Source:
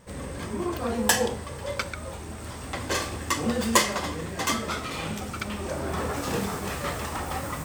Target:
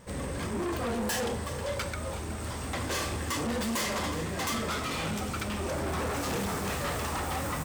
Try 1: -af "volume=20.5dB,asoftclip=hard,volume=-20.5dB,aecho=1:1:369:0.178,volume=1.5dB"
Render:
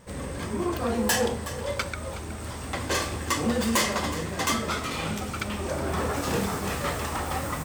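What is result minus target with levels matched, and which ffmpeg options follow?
overloaded stage: distortion -7 dB
-af "volume=30.5dB,asoftclip=hard,volume=-30.5dB,aecho=1:1:369:0.178,volume=1.5dB"

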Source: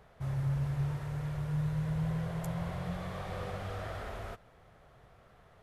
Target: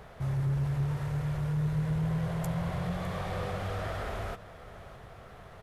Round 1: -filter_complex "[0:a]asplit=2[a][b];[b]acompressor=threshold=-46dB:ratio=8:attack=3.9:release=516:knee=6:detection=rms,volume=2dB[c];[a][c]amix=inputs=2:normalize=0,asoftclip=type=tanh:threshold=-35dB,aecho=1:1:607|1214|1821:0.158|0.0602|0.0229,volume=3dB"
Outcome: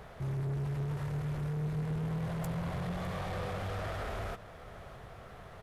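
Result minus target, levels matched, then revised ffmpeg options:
soft clip: distortion +10 dB
-filter_complex "[0:a]asplit=2[a][b];[b]acompressor=threshold=-46dB:ratio=8:attack=3.9:release=516:knee=6:detection=rms,volume=2dB[c];[a][c]amix=inputs=2:normalize=0,asoftclip=type=tanh:threshold=-26dB,aecho=1:1:607|1214|1821:0.158|0.0602|0.0229,volume=3dB"

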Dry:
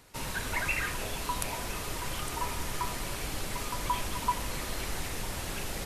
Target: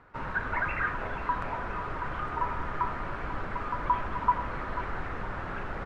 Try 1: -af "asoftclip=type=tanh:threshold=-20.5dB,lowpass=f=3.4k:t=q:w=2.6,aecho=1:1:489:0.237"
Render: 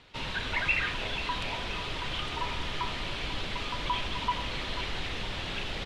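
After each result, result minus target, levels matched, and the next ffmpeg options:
4000 Hz band +20.0 dB; soft clip: distortion +16 dB
-af "asoftclip=type=tanh:threshold=-20.5dB,lowpass=f=1.4k:t=q:w=2.6,aecho=1:1:489:0.237"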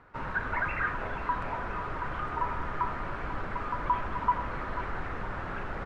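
soft clip: distortion +16 dB
-af "asoftclip=type=tanh:threshold=-10.5dB,lowpass=f=1.4k:t=q:w=2.6,aecho=1:1:489:0.237"

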